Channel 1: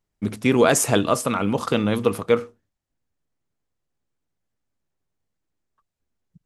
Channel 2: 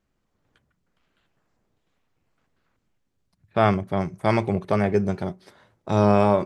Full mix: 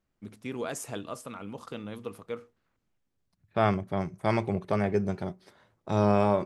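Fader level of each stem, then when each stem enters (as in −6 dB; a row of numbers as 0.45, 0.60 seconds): −18.0, −5.5 decibels; 0.00, 0.00 seconds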